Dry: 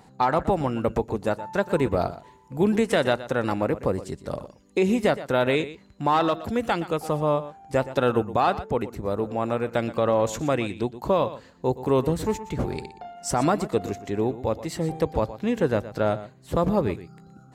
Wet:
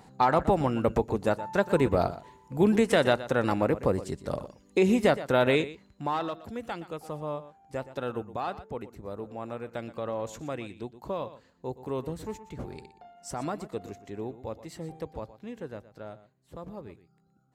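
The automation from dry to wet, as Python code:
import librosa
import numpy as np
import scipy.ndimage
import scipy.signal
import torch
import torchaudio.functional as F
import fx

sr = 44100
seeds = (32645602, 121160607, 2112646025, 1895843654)

y = fx.gain(x, sr, db=fx.line((5.56, -1.0), (6.35, -11.5), (14.75, -11.5), (16.13, -19.5)))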